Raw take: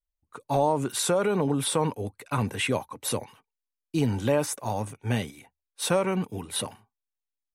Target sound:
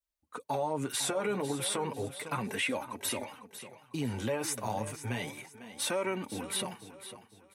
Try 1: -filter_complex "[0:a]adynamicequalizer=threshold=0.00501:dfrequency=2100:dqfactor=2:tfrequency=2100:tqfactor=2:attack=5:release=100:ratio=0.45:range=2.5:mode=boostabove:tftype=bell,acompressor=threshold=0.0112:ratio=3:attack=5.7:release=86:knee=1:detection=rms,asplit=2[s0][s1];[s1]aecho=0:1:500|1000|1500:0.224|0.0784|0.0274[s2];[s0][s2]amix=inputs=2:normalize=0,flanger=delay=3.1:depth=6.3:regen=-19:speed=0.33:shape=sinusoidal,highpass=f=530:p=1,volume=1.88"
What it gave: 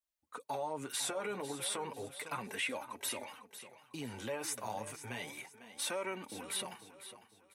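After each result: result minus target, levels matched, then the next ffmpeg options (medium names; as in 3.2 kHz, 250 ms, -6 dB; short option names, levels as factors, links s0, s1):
125 Hz band -6.5 dB; compression: peak gain reduction +4 dB
-filter_complex "[0:a]adynamicequalizer=threshold=0.00501:dfrequency=2100:dqfactor=2:tfrequency=2100:tqfactor=2:attack=5:release=100:ratio=0.45:range=2.5:mode=boostabove:tftype=bell,acompressor=threshold=0.0112:ratio=3:attack=5.7:release=86:knee=1:detection=rms,asplit=2[s0][s1];[s1]aecho=0:1:500|1000|1500:0.224|0.0784|0.0274[s2];[s0][s2]amix=inputs=2:normalize=0,flanger=delay=3.1:depth=6.3:regen=-19:speed=0.33:shape=sinusoidal,highpass=f=170:p=1,volume=1.88"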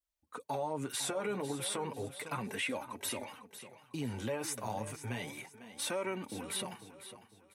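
compression: peak gain reduction +4 dB
-filter_complex "[0:a]adynamicequalizer=threshold=0.00501:dfrequency=2100:dqfactor=2:tfrequency=2100:tqfactor=2:attack=5:release=100:ratio=0.45:range=2.5:mode=boostabove:tftype=bell,acompressor=threshold=0.0224:ratio=3:attack=5.7:release=86:knee=1:detection=rms,asplit=2[s0][s1];[s1]aecho=0:1:500|1000|1500:0.224|0.0784|0.0274[s2];[s0][s2]amix=inputs=2:normalize=0,flanger=delay=3.1:depth=6.3:regen=-19:speed=0.33:shape=sinusoidal,highpass=f=170:p=1,volume=1.88"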